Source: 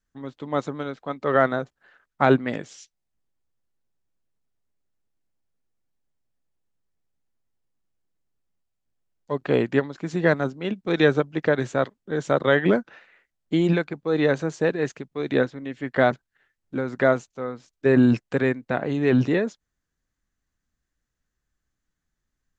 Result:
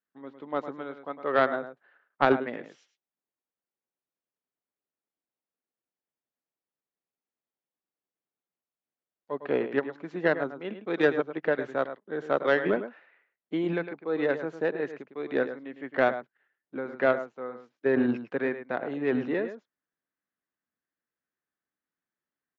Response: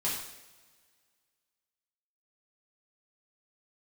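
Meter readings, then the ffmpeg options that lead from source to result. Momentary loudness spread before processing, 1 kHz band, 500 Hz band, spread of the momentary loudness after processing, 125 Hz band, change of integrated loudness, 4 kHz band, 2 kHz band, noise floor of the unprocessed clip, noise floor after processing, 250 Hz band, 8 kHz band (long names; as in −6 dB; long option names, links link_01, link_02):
12 LU, −3.5 dB, −4.5 dB, 13 LU, −15.0 dB, −5.5 dB, −8.0 dB, −4.0 dB, −81 dBFS, below −85 dBFS, −8.0 dB, can't be measured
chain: -filter_complex "[0:a]highpass=280,lowpass=2500,asplit=2[link_01][link_02];[link_02]adelay=105,volume=-10dB,highshelf=frequency=4000:gain=-2.36[link_03];[link_01][link_03]amix=inputs=2:normalize=0,aeval=exprs='0.596*(cos(1*acos(clip(val(0)/0.596,-1,1)))-cos(1*PI/2))+0.0944*(cos(3*acos(clip(val(0)/0.596,-1,1)))-cos(3*PI/2))':channel_layout=same"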